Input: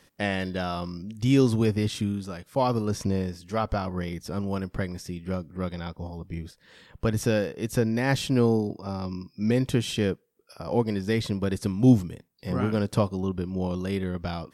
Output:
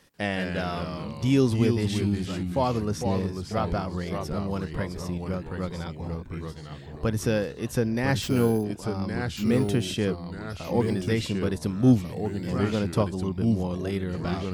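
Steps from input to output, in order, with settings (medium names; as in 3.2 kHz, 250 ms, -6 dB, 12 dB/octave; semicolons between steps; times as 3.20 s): 8.22–8.64 s: sample-rate reducer 11 kHz, jitter 0%; ever faster or slower copies 140 ms, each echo -2 st, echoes 3, each echo -6 dB; trim -1 dB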